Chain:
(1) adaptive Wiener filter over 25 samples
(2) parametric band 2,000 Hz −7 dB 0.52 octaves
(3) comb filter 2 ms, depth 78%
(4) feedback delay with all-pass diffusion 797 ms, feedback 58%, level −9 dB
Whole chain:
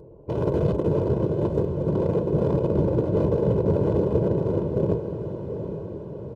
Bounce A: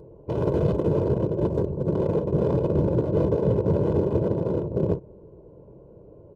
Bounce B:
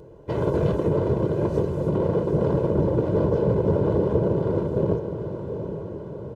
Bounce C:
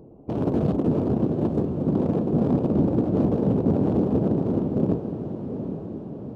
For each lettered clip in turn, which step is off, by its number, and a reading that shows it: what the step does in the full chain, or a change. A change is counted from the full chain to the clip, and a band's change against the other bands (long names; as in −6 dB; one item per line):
4, echo-to-direct ratio −7.0 dB to none audible
1, 1 kHz band +2.5 dB
3, 250 Hz band +5.5 dB